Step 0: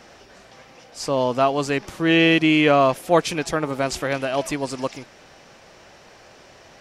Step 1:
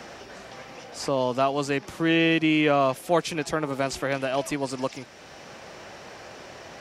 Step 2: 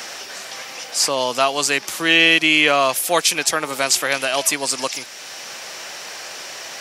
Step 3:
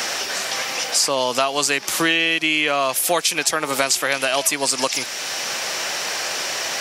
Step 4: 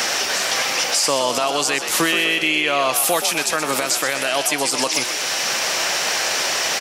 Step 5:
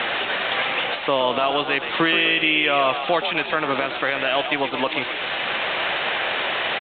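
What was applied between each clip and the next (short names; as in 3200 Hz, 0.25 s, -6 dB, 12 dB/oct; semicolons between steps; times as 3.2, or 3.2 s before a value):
HPF 43 Hz; three-band squash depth 40%; gain -4 dB
tilt +4.5 dB/oct; gain +6.5 dB
compressor 6:1, threshold -24 dBFS, peak gain reduction 14 dB; gain +8 dB
limiter -12 dBFS, peak gain reduction 9.5 dB; on a send: frequency-shifting echo 0.125 s, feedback 58%, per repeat +55 Hz, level -9 dB; on the sum: gain +3.5 dB
sample gate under -29 dBFS; downsampling 8000 Hz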